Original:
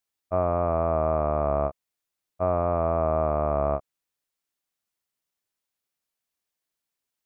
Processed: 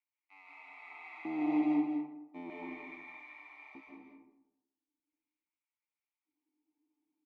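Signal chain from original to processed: median filter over 41 samples; Doppler pass-by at 1.72 s, 17 m/s, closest 2.4 m; high-pass 52 Hz; bass shelf 94 Hz +8 dB; comb 6.7 ms, depth 73%; de-hum 69.64 Hz, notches 8; waveshaping leveller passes 3; upward compressor, threshold -49 dBFS; vowel filter u; LFO high-pass square 0.4 Hz 270–1600 Hz; delay 210 ms -7.5 dB; reverberation RT60 0.90 s, pre-delay 105 ms, DRR -3 dB

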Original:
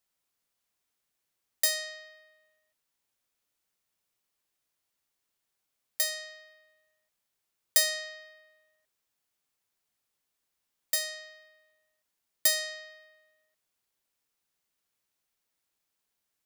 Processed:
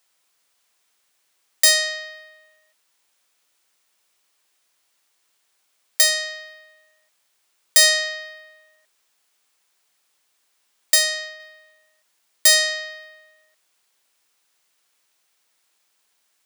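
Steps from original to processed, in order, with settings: high-pass 630 Hz 6 dB/octave; peaking EQ 14 kHz -11.5 dB 0.29 oct; loudness maximiser +16.5 dB; 10.94–11.40 s: tape noise reduction on one side only decoder only; trim -1 dB

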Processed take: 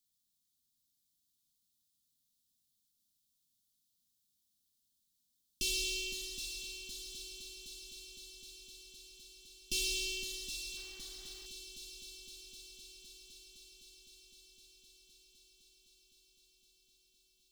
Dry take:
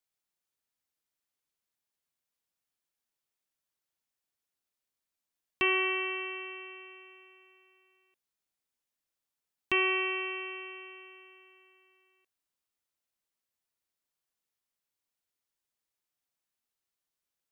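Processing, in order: hard clipper -31.5 dBFS, distortion -7 dB; elliptic band-stop 260–3600 Hz, stop band 40 dB; on a send: multi-head delay 256 ms, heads second and third, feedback 73%, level -9 dB; 10.77–11.46 s: on the sum: hysteresis with a dead band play -55.5 dBFS; trim +8 dB

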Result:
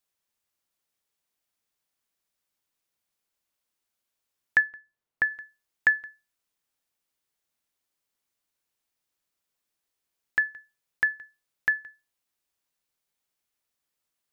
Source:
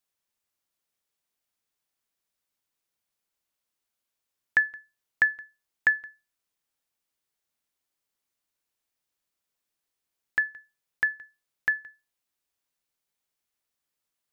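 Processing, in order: 4.60–5.30 s: treble shelf 2.5 kHz -> 2.2 kHz -11 dB; trim +1 dB

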